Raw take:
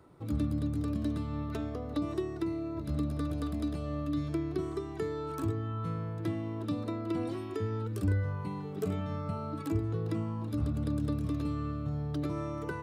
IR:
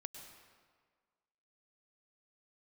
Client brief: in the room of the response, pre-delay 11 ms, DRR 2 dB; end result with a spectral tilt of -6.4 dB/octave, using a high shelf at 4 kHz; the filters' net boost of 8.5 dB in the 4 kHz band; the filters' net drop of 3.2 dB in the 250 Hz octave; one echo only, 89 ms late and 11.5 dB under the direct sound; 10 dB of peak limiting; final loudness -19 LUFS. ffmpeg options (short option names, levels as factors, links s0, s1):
-filter_complex "[0:a]equalizer=f=250:t=o:g=-4.5,highshelf=f=4000:g=8,equalizer=f=4000:t=o:g=5.5,alimiter=level_in=2:limit=0.0631:level=0:latency=1,volume=0.501,aecho=1:1:89:0.266,asplit=2[s0][s1];[1:a]atrim=start_sample=2205,adelay=11[s2];[s1][s2]afir=irnorm=-1:irlink=0,volume=1.26[s3];[s0][s3]amix=inputs=2:normalize=0,volume=7.94"